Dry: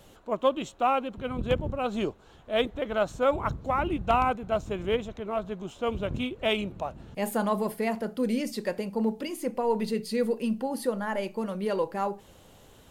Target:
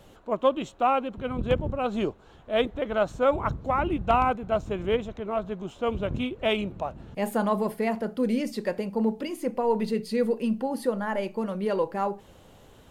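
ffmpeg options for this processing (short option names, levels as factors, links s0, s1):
-af "highshelf=f=3700:g=-6.5,volume=1.26"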